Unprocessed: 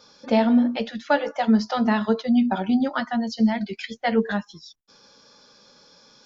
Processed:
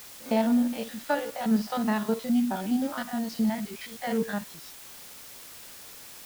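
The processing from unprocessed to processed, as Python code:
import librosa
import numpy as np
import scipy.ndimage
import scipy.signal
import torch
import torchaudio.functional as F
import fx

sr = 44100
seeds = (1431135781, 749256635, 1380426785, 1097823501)

y = fx.spec_steps(x, sr, hold_ms=50)
y = fx.dmg_noise_colour(y, sr, seeds[0], colour='white', level_db=-41.0)
y = F.gain(torch.from_numpy(y), -5.0).numpy()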